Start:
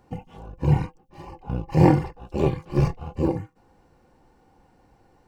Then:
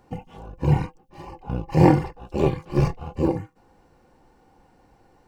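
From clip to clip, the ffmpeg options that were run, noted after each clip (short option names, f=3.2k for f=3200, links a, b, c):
-af "equalizer=f=90:t=o:w=2.4:g=-2.5,volume=2dB"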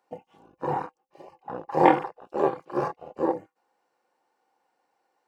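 -af "afwtdn=0.0224,highpass=580,volume=5dB"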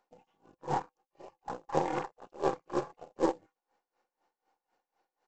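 -af "aeval=exprs='if(lt(val(0),0),0.708*val(0),val(0))':c=same,aresample=16000,acrusher=bits=5:mode=log:mix=0:aa=0.000001,aresample=44100,aeval=exprs='val(0)*pow(10,-19*(0.5-0.5*cos(2*PI*4*n/s))/20)':c=same"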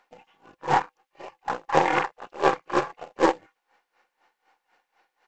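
-af "equalizer=f=2.1k:t=o:w=2.3:g=13.5,volume=5dB"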